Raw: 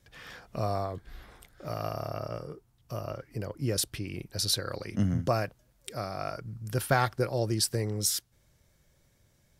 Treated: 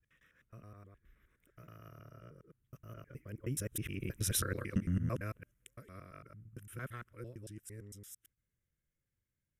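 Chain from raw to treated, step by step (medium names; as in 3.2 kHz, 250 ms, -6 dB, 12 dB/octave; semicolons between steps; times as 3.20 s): time reversed locally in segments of 109 ms; Doppler pass-by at 4.30 s, 13 m/s, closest 4.4 m; static phaser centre 1.9 kHz, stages 4; trim +2 dB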